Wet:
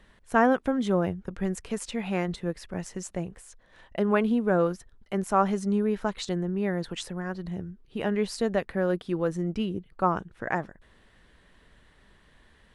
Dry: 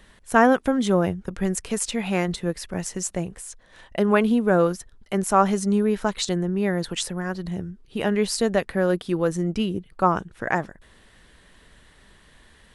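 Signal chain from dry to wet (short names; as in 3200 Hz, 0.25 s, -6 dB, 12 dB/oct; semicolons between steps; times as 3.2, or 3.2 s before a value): high shelf 4900 Hz -10 dB; gain -4.5 dB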